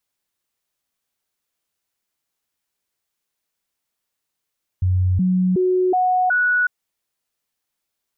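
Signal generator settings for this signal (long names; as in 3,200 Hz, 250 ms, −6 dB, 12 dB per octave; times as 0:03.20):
stepped sweep 91.9 Hz up, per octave 1, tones 5, 0.37 s, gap 0.00 s −14.5 dBFS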